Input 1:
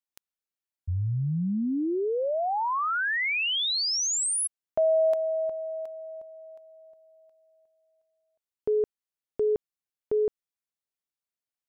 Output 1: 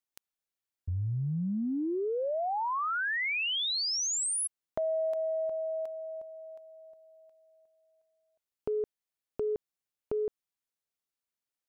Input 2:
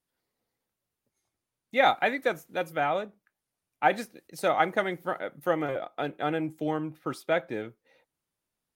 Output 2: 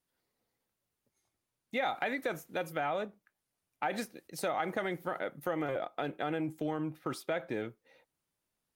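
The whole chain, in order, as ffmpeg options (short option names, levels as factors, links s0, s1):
-af "acompressor=threshold=0.0316:ratio=4:attack=3.5:release=101:knee=1:detection=peak"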